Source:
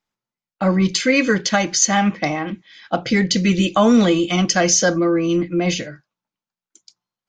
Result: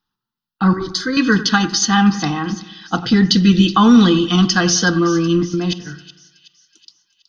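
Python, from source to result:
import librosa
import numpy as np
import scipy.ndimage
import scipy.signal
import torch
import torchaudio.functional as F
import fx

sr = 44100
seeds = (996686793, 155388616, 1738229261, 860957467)

y = fx.fixed_phaser(x, sr, hz=730.0, stages=6, at=(0.73, 1.17))
y = fx.level_steps(y, sr, step_db=22, at=(5.45, 5.85), fade=0.02)
y = fx.fixed_phaser(y, sr, hz=2200.0, stages=6)
y = fx.echo_split(y, sr, split_hz=2500.0, low_ms=95, high_ms=372, feedback_pct=52, wet_db=-15)
y = y * librosa.db_to_amplitude(6.5)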